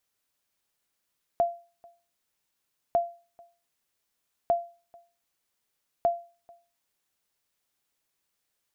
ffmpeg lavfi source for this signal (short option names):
-f lavfi -i "aevalsrc='0.158*(sin(2*PI*688*mod(t,1.55))*exp(-6.91*mod(t,1.55)/0.35)+0.0398*sin(2*PI*688*max(mod(t,1.55)-0.44,0))*exp(-6.91*max(mod(t,1.55)-0.44,0)/0.35))':d=6.2:s=44100"